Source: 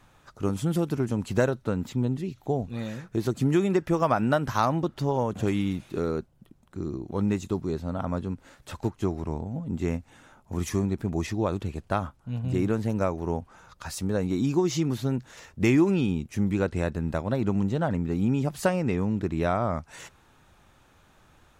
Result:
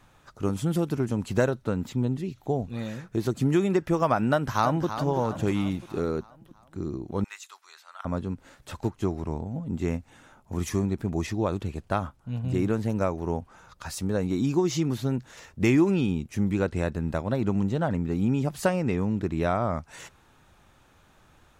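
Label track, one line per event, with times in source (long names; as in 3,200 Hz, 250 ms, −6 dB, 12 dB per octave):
4.310000	4.890000	delay throw 330 ms, feedback 55%, level −10 dB
7.240000	8.050000	high-pass filter 1,200 Hz 24 dB per octave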